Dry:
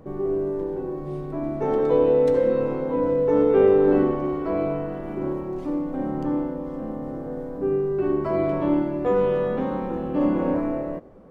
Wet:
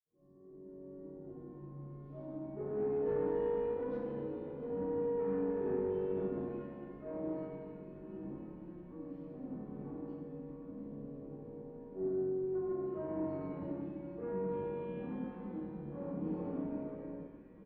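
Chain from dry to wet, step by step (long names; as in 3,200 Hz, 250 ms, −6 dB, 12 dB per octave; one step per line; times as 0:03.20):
fade in at the beginning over 1.03 s
low-shelf EQ 68 Hz +11 dB
notch filter 730 Hz, Q 13
reversed playback
upward compression, threshold −30 dBFS
reversed playback
time stretch by phase vocoder 1.5×
multiband delay without the direct sound lows, highs 300 ms, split 1,700 Hz
tube saturation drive 19 dB, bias 0.7
delay with a high-pass on its return 645 ms, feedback 85%, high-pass 1,500 Hz, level −17 dB
convolution reverb RT60 0.75 s, pre-delay 46 ms
wrong playback speed 25 fps video run at 24 fps
level −5 dB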